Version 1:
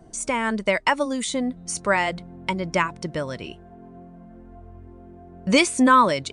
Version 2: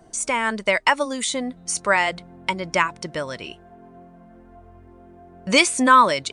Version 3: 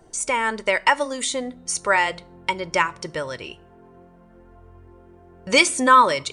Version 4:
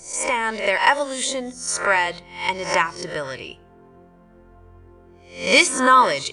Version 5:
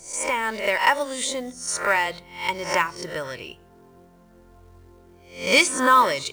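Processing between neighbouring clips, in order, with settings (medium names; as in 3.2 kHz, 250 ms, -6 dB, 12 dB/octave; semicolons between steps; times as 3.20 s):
bass shelf 440 Hz -9.5 dB; trim +4 dB
reverberation RT60 0.50 s, pre-delay 4 ms, DRR 16.5 dB; trim -1 dB
reverse spectral sustain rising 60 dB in 0.43 s; trim -1 dB
companded quantiser 6-bit; trim -2.5 dB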